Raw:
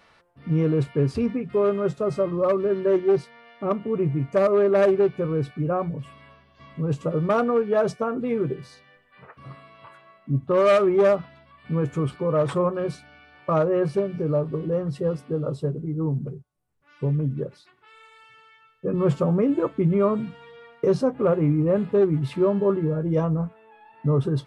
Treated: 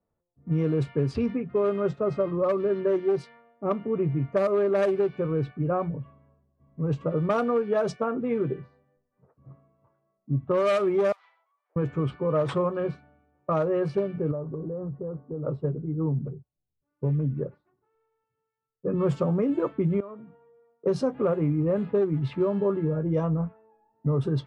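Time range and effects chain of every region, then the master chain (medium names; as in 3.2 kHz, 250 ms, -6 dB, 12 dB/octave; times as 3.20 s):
11.12–11.76 s: comb filter that takes the minimum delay 0.93 ms + Bessel high-pass 1 kHz, order 8 + compression 2.5:1, threshold -53 dBFS
14.31–15.45 s: low-pass 1.4 kHz 24 dB/octave + compression 12:1, threshold -26 dBFS
20.00–20.86 s: tone controls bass -9 dB, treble -8 dB + compression 3:1, threshold -40 dBFS
whole clip: level-controlled noise filter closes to 460 Hz, open at -16 dBFS; compression, threshold -21 dBFS; three bands expanded up and down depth 40%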